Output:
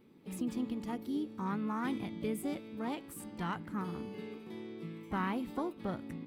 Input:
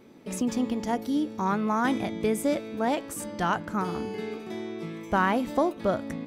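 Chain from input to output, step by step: harmoniser +5 st -11 dB; fifteen-band EQ 160 Hz +4 dB, 630 Hz -10 dB, 1600 Hz -4 dB, 6300 Hz -10 dB; gain -9 dB

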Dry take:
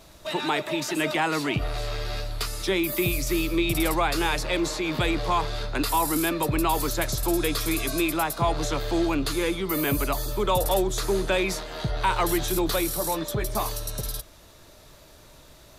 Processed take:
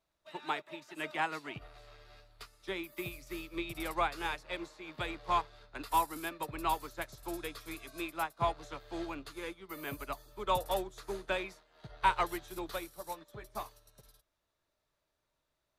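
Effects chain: bell 1400 Hz +7 dB 2.9 oct; upward expander 2.5:1, over -32 dBFS; gain -8.5 dB

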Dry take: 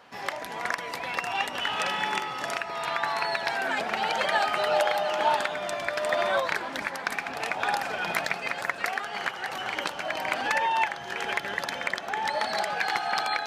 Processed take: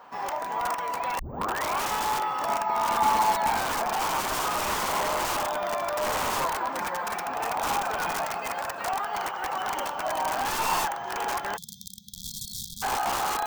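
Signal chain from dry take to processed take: 1.19 tape start 0.65 s; 6.74–7.25 comb 5.6 ms, depth 61%; wrapped overs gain 23.5 dB; 2.48–3.6 small resonant body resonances 220/860/2200 Hz, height 9 dB; 11.57–12.82 spectral delete 230–3200 Hz; careless resampling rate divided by 2×, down filtered, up hold; graphic EQ 125/1000/2000/4000 Hz -3/+10/-4/-5 dB

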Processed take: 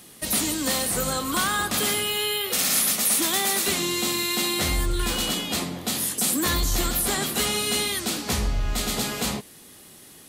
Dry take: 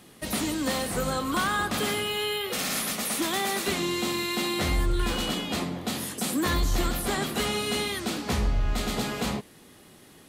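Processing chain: high shelf 4100 Hz +11.5 dB

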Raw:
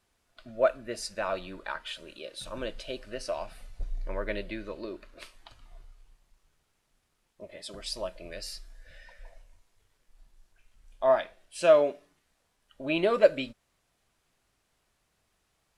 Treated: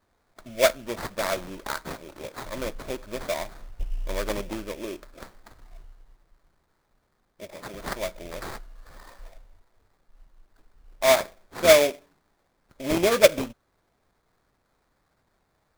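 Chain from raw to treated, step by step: sample-rate reducer 2900 Hz, jitter 20%; gain +4 dB

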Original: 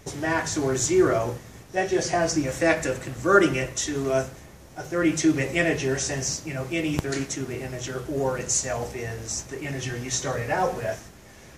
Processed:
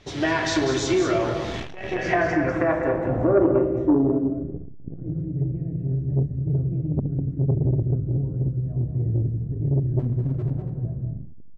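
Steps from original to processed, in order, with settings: recorder AGC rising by 50 dB/s; low-pass sweep 3800 Hz -> 140 Hz, 1.48–4.8; 7.38–7.97 low shelf 140 Hz +4.5 dB; 9.99–10.67 overloaded stage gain 17 dB; echo 0.198 s -7 dB; on a send at -7 dB: reverb RT60 2.1 s, pre-delay 3 ms; on the sum: core saturation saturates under 390 Hz; gain -4.5 dB

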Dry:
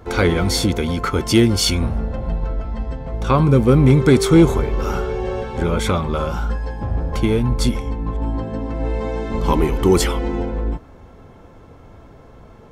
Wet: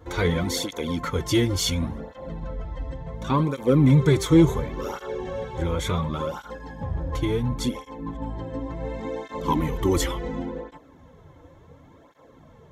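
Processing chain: ripple EQ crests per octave 1.1, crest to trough 6 dB; tape flanging out of phase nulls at 0.7 Hz, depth 5.2 ms; gain -4 dB

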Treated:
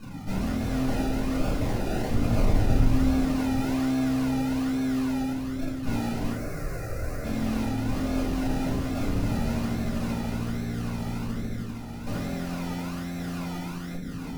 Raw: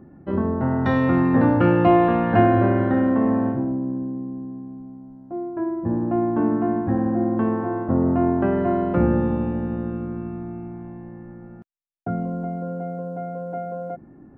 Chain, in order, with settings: low shelf 440 Hz +3 dB; wavefolder -18.5 dBFS; diffused feedback echo 1.157 s, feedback 59%, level -15 dB; in parallel at -3 dB: compressor, threshold -32 dBFS, peak gain reduction 11 dB; on the sum: FFT band-reject 320–1200 Hz; decimation with a swept rate 32×, swing 60% 1.2 Hz; tube stage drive 31 dB, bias 0.7; 2.1–3.11 low shelf 220 Hz +6.5 dB; 6.32–7.24 fixed phaser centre 880 Hz, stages 6; shoebox room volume 220 m³, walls furnished, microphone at 6.7 m; gain -8 dB

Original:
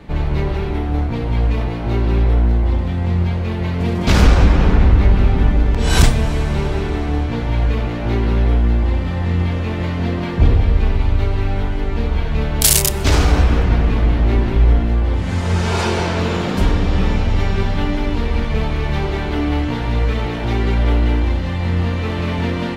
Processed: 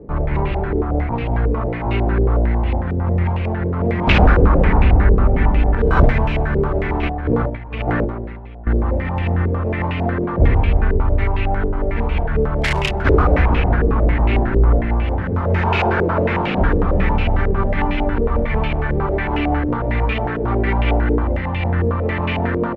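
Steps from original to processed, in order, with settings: 7.03–8.67 negative-ratio compressor -21 dBFS, ratio -0.5; outdoor echo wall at 22 m, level -16 dB; stepped low-pass 11 Hz 450–2600 Hz; gain -1.5 dB

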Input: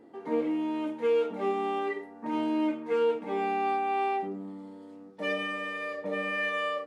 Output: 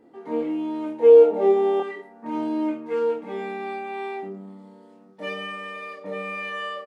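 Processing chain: 0.99–1.8 band shelf 530 Hz +12 dB; doubler 26 ms -3.5 dB; gain -1.5 dB

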